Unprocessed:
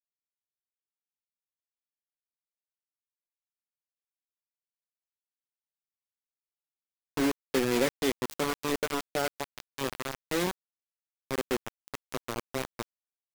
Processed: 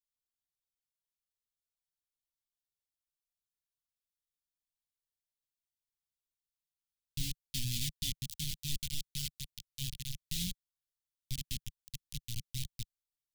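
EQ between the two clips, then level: elliptic band-stop 150–3300 Hz, stop band 60 dB; low shelf 76 Hz +12 dB; 0.0 dB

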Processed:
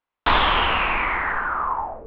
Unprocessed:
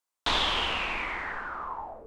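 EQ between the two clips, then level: LPF 3000 Hz 24 dB/oct; low shelf 160 Hz +5.5 dB; dynamic EQ 1200 Hz, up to +6 dB, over -43 dBFS, Q 0.95; +6.5 dB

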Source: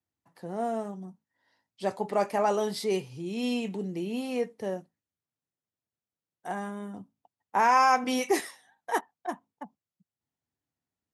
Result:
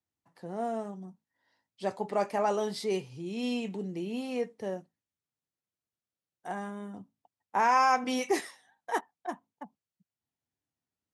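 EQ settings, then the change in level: LPF 9700 Hz 12 dB/oct; -2.5 dB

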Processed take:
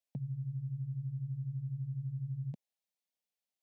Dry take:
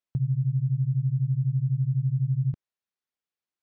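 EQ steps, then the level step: HPF 220 Hz 12 dB/oct; fixed phaser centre 350 Hz, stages 6; +1.0 dB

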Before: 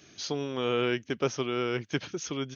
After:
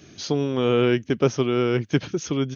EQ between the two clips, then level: low shelf 480 Hz +9.5 dB; +3.0 dB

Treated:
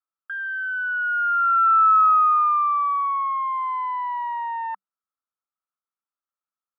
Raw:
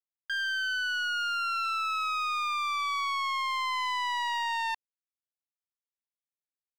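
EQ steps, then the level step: rippled Chebyshev high-pass 190 Hz, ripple 3 dB; synth low-pass 1300 Hz, resonance Q 9.6; air absorption 270 m; 0.0 dB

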